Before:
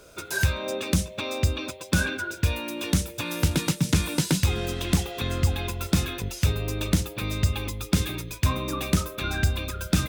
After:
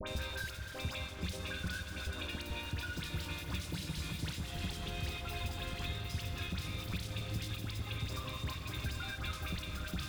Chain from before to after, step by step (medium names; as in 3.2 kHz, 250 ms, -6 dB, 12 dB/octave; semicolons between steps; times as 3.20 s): slices played last to first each 147 ms, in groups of 5; peaking EQ 380 Hz -7.5 dB 2.7 oct; feedback comb 100 Hz, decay 1.3 s, harmonics odd, mix 70%; echo whose repeats swap between lows and highs 150 ms, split 1.3 kHz, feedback 74%, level -11 dB; saturation -32 dBFS, distortion -11 dB; resonant high shelf 5.2 kHz -6 dB, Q 1.5; hum notches 50/100/150/200/250/300 Hz; on a send at -8.5 dB: reverberation RT60 2.6 s, pre-delay 57 ms; on the sum: crossover distortion -52 dBFS; phase dispersion highs, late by 71 ms, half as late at 1.5 kHz; three bands compressed up and down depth 100%; trim +2 dB